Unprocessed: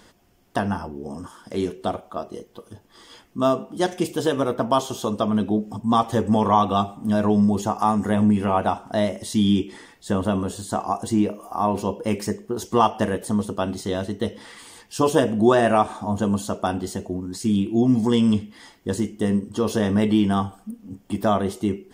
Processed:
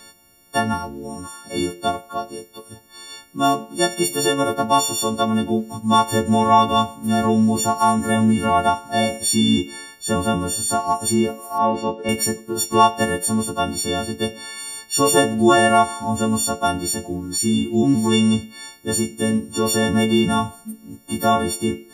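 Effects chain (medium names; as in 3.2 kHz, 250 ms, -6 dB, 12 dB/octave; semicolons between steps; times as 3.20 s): partials quantised in pitch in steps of 4 st; 11.58–12.09 s: band-pass 140–3300 Hz; trim +1.5 dB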